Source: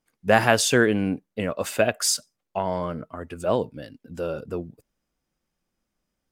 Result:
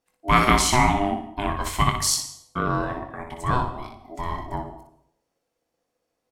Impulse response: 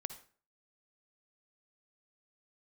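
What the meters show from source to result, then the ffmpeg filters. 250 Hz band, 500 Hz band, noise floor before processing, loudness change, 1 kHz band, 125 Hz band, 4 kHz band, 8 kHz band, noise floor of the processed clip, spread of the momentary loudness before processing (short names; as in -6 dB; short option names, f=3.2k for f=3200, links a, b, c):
-0.5 dB, -7.0 dB, -82 dBFS, +0.5 dB, +6.0 dB, +4.0 dB, +1.5 dB, +1.0 dB, -79 dBFS, 17 LU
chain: -filter_complex "[0:a]aecho=1:1:22|61:0.398|0.501,aeval=exprs='val(0)*sin(2*PI*500*n/s)':c=same,asplit=2[a][b];[1:a]atrim=start_sample=2205,asetrate=26460,aresample=44100[c];[b][c]afir=irnorm=-1:irlink=0,volume=3.5dB[d];[a][d]amix=inputs=2:normalize=0,volume=-6dB"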